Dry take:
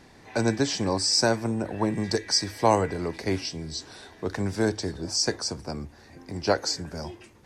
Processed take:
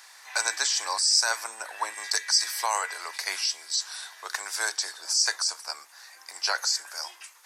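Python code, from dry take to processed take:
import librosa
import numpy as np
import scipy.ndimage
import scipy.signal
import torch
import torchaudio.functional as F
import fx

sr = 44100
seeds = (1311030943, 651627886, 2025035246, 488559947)

p1 = scipy.signal.sosfilt(scipy.signal.butter(4, 1200.0, 'highpass', fs=sr, output='sos'), x)
p2 = fx.peak_eq(p1, sr, hz=2300.0, db=-13.0, octaves=2.8)
p3 = fx.over_compress(p2, sr, threshold_db=-42.0, ratio=-0.5)
p4 = p2 + (p3 * librosa.db_to_amplitude(1.0))
y = p4 * librosa.db_to_amplitude(8.5)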